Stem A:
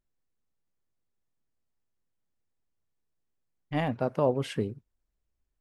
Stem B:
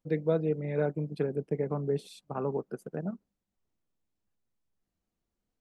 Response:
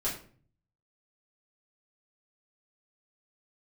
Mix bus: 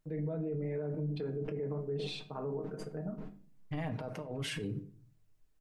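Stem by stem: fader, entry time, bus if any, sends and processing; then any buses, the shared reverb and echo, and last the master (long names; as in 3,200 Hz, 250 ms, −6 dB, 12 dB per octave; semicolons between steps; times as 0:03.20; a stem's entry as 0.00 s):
−1.5 dB, 0.00 s, send −14.5 dB, compressor whose output falls as the input rises −32 dBFS, ratio −0.5
−8.5 dB, 0.00 s, send −9.5 dB, noise gate −53 dBFS, range −30 dB; low-pass filter 2,000 Hz 12 dB per octave; level that may fall only so fast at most 53 dB per second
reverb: on, RT60 0.45 s, pre-delay 4 ms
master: comb filter 6.5 ms, depth 54%; brickwall limiter −29.5 dBFS, peak gain reduction 10.5 dB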